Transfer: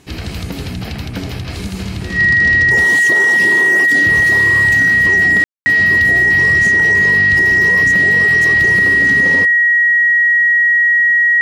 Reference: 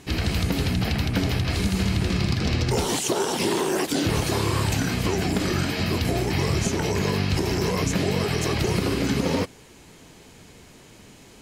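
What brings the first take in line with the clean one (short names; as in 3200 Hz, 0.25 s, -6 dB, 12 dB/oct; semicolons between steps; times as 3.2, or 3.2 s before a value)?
notch 1900 Hz, Q 30; room tone fill 5.44–5.66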